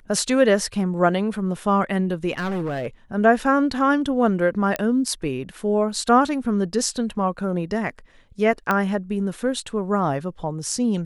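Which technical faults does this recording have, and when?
2.38–2.87 clipped -22.5 dBFS
4.76 pop -8 dBFS
8.71 pop -8 dBFS

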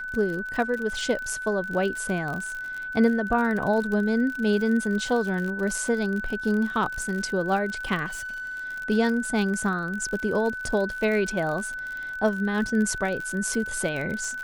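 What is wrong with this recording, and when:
crackle 55/s -30 dBFS
tone 1500 Hz -31 dBFS
8.06–8.65 clipped -31.5 dBFS

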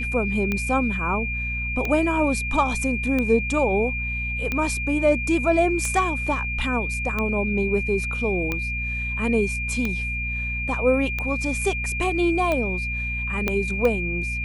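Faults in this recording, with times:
hum 60 Hz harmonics 4 -30 dBFS
tick 45 rpm -12 dBFS
tone 2400 Hz -27 dBFS
13.48 pop -9 dBFS

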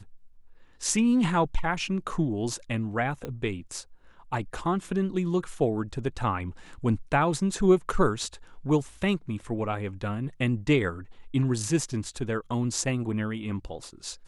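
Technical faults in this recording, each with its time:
3.25 pop -21 dBFS

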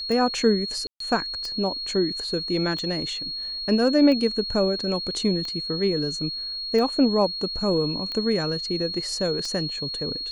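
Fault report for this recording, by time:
tick 45 rpm -19 dBFS
tone 4300 Hz -29 dBFS
0.87–1 gap 0.133 s

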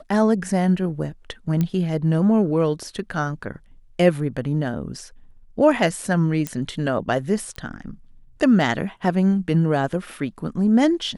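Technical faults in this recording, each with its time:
1.61 pop -11 dBFS
6.47 pop -11 dBFS
7.56 pop -18 dBFS

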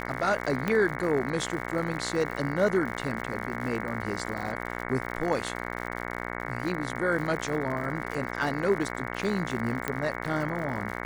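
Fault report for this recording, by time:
buzz 60 Hz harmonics 37 -35 dBFS
crackle 110/s -35 dBFS
0.68 pop -14 dBFS
9.88 pop -13 dBFS

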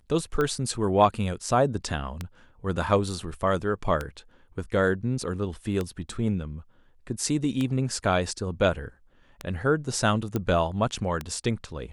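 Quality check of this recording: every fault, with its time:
tick 33 1/3 rpm -15 dBFS
10.36 pop -14 dBFS

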